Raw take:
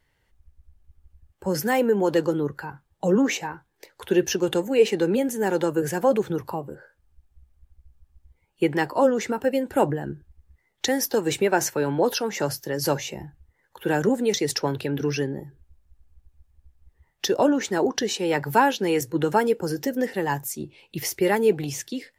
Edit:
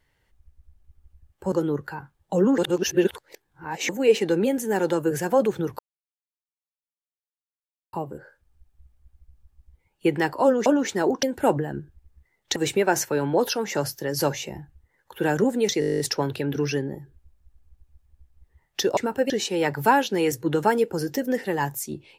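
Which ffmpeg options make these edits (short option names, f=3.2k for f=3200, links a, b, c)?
-filter_complex "[0:a]asplit=20[a][b][c][d][e][f][g][h][i][j][k][l][m][n][o][p][q][r][s][t];[a]atrim=end=1.522[u];[b]atrim=start=2.228:end=3.292[v];[c]atrim=start=3.288:end=4.602,asetpts=PTS-STARTPTS,areverse[w];[d]atrim=start=4.598:end=6.5,asetpts=PTS-STARTPTS,afade=t=out:st=1.898:d=0.004:c=hsin,apad=pad_dur=2.14[x];[e]atrim=start=6.5:end=9.232,asetpts=PTS-STARTPTS,afade=t=in:d=0.004:c=hsin[y];[f]atrim=start=17.418:end=17.992[z];[g]atrim=start=9.558:end=10.892[aa];[h]atrim=start=11.208:end=14.472[ab];[i]atrim=start=14.448:end=14.472[ac];[j]atrim=start=14.448:end=14.472[ad];[k]atrim=start=14.448:end=14.472[ae];[l]atrim=start=14.448:end=14.472[af];[m]atrim=start=14.448:end=14.472[ag];[n]atrim=start=14.448:end=14.472[ah];[o]atrim=start=14.448:end=14.472[ai];[p]atrim=start=14.448:end=14.472[aj];[q]atrim=start=14.448:end=14.472[ak];[r]atrim=start=14.448:end=17.422[al];[s]atrim=start=9.228:end=9.562[am];[t]atrim=start=17.988[an];[u][v]acrossfade=d=0.004:c1=hsin:c2=hsin[ao];[ao][w]acrossfade=d=0.004:c1=hsin:c2=hsin[ap];[x][y]concat=n=2:v=0:a=1[aq];[ap][aq]acrossfade=d=0.004:c1=hsin:c2=hsin[ar];[ar][z]acrossfade=d=0.004:c1=hsin:c2=hsin[as];[as][aa]acrossfade=d=0.004:c1=hsin:c2=hsin[at];[at][ab]acrossfade=d=0.004:c1=hsin:c2=hsin[au];[au][ac]acrossfade=d=0.004:c1=hsin:c2=hsin[av];[av][ad]acrossfade=d=0.004:c1=hsin:c2=hsin[aw];[aw][ae]acrossfade=d=0.004:c1=hsin:c2=hsin[ax];[ax][af]acrossfade=d=0.004:c1=hsin:c2=hsin[ay];[ay][ag]acrossfade=d=0.004:c1=hsin:c2=hsin[az];[az][ah]acrossfade=d=0.004:c1=hsin:c2=hsin[ba];[ba][ai]acrossfade=d=0.004:c1=hsin:c2=hsin[bb];[bb][aj]acrossfade=d=0.004:c1=hsin:c2=hsin[bc];[bc][ak]acrossfade=d=0.004:c1=hsin:c2=hsin[bd];[bd][al]acrossfade=d=0.004:c1=hsin:c2=hsin[be];[be][am]acrossfade=d=0.004:c1=hsin:c2=hsin[bf];[bf][an]acrossfade=d=0.004:c1=hsin:c2=hsin"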